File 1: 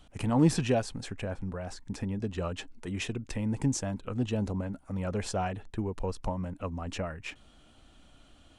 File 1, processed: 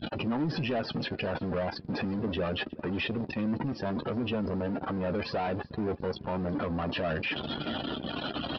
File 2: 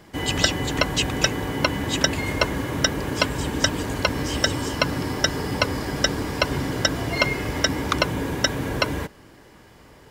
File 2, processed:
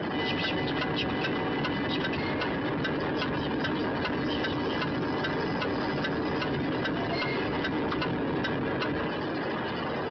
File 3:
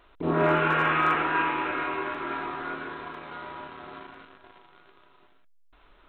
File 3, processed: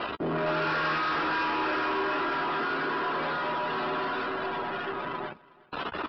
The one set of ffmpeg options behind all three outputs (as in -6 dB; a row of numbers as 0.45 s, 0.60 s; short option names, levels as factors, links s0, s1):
-filter_complex "[0:a]aeval=exprs='val(0)+0.5*0.126*sgn(val(0))':c=same,afftdn=nr=34:nf=-28,bandreject=f=2200:w=7.4,acrossover=split=3400[s0][s1];[s1]acompressor=threshold=0.0178:ratio=4:attack=1:release=60[s2];[s0][s2]amix=inputs=2:normalize=0,highpass=160,acrossover=split=1600[s3][s4];[s3]alimiter=limit=0.158:level=0:latency=1[s5];[s5][s4]amix=inputs=2:normalize=0,acrusher=bits=6:mode=log:mix=0:aa=0.000001,aresample=11025,asoftclip=type=tanh:threshold=0.0794,aresample=44100,asplit=2[s6][s7];[s7]adelay=13,volume=0.251[s8];[s6][s8]amix=inputs=2:normalize=0,aecho=1:1:366|732:0.0708|0.0198,volume=0.708"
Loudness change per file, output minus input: +0.5 LU, -6.0 LU, -3.0 LU